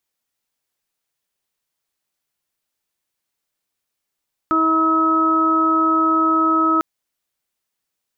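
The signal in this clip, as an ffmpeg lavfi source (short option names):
-f lavfi -i "aevalsrc='0.119*sin(2*PI*321*t)+0.0355*sin(2*PI*642*t)+0.0316*sin(2*PI*963*t)+0.178*sin(2*PI*1284*t)':d=2.3:s=44100"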